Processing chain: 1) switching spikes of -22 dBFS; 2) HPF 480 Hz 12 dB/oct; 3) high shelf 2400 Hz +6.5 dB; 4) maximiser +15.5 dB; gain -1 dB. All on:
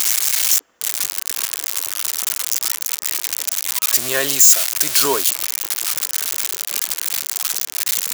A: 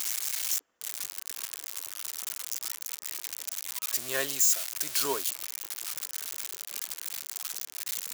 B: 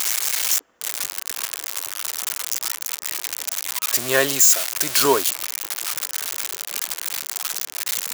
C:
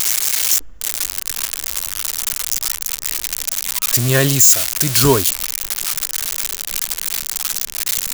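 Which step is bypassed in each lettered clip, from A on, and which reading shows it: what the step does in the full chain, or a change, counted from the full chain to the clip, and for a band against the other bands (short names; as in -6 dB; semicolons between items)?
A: 4, crest factor change +4.5 dB; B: 3, crest factor change +4.0 dB; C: 2, 125 Hz band +22.0 dB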